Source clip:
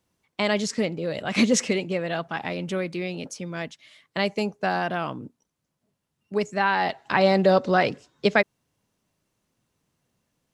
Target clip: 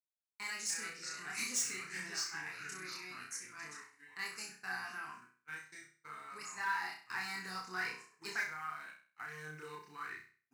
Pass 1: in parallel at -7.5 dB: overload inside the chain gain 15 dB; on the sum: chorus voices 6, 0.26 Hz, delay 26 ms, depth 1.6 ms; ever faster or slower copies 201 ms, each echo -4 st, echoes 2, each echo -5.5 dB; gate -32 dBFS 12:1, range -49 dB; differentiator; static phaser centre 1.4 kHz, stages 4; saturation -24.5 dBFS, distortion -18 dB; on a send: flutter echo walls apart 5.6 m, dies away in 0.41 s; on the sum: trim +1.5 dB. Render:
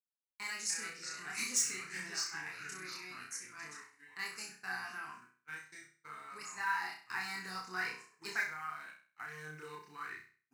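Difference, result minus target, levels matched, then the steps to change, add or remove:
saturation: distortion -7 dB
change: saturation -31.5 dBFS, distortion -11 dB

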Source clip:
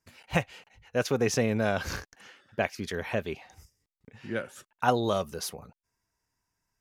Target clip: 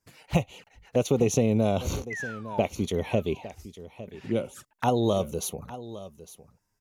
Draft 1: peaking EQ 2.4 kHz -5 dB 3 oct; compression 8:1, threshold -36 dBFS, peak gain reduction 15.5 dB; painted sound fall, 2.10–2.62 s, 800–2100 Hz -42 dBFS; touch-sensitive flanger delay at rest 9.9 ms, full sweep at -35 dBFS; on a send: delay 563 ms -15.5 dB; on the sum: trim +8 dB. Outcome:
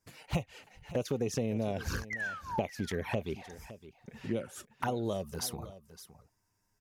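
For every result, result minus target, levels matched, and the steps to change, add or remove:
compression: peak gain reduction +9.5 dB; echo 294 ms early
change: compression 8:1, threshold -25 dBFS, peak gain reduction 6 dB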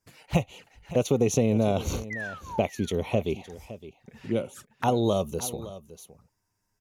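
echo 294 ms early
change: delay 857 ms -15.5 dB

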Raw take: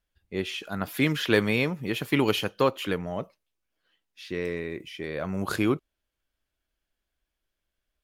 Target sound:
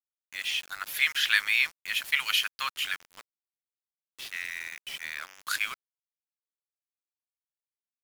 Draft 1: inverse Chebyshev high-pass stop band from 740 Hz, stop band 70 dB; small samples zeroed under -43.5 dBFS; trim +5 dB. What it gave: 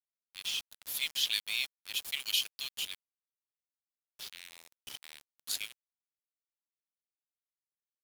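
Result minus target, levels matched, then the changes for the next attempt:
1 kHz band -13.5 dB
change: inverse Chebyshev high-pass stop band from 330 Hz, stop band 70 dB

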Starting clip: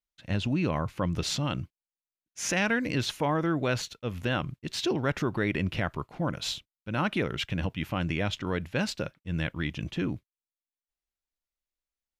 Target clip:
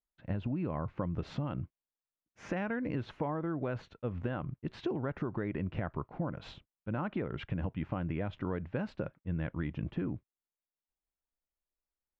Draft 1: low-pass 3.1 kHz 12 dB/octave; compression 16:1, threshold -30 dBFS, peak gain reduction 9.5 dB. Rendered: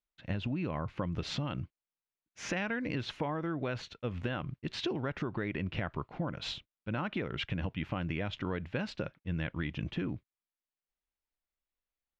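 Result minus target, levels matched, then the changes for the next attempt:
4 kHz band +12.0 dB
change: low-pass 1.3 kHz 12 dB/octave

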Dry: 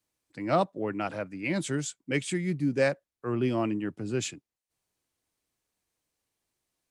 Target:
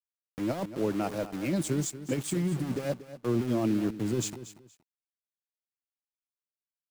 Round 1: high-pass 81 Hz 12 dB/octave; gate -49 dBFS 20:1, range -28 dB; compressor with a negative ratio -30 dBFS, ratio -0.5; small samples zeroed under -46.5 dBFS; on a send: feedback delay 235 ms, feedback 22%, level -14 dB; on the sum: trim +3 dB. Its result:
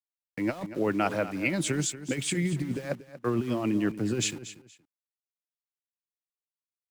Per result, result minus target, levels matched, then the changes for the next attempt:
2 kHz band +8.0 dB; small samples zeroed: distortion -10 dB
add after high-pass: peaking EQ 2 kHz -13 dB 2.1 oct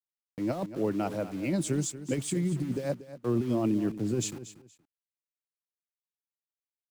small samples zeroed: distortion -9 dB
change: small samples zeroed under -40 dBFS

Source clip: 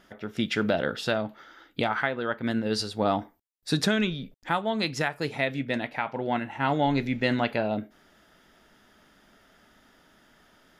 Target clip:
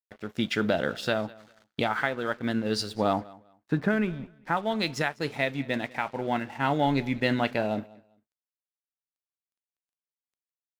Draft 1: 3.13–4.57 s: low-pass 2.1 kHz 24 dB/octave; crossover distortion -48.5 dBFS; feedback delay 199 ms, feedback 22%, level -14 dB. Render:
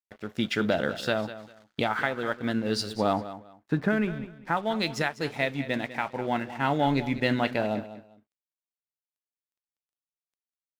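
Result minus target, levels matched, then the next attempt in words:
echo-to-direct +8.5 dB
3.13–4.57 s: low-pass 2.1 kHz 24 dB/octave; crossover distortion -48.5 dBFS; feedback delay 199 ms, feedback 22%, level -22.5 dB

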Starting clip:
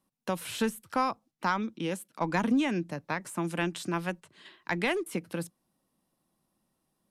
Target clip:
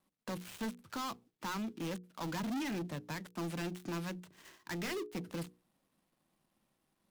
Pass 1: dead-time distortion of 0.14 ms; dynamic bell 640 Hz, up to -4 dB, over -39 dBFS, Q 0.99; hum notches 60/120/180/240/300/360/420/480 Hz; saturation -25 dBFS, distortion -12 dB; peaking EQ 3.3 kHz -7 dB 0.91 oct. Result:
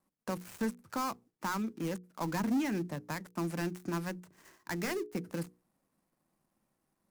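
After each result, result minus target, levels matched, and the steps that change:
4 kHz band -5.5 dB; saturation: distortion -7 dB
change: peaking EQ 3.3 kHz +2 dB 0.91 oct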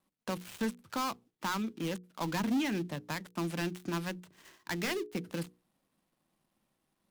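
saturation: distortion -7 dB
change: saturation -34.5 dBFS, distortion -5 dB

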